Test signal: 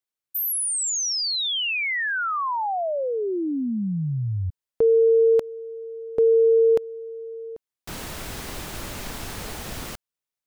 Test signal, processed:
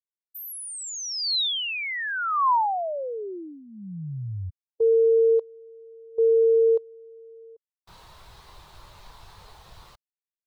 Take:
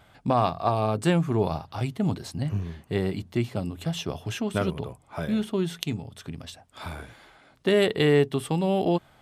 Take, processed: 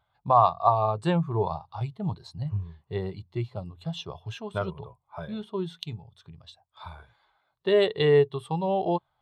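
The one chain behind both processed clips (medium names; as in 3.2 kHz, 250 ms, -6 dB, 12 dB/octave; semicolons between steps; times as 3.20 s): fifteen-band graphic EQ 250 Hz -11 dB, 1 kHz +8 dB, 4 kHz +7 dB; spectral contrast expander 1.5:1; trim -1.5 dB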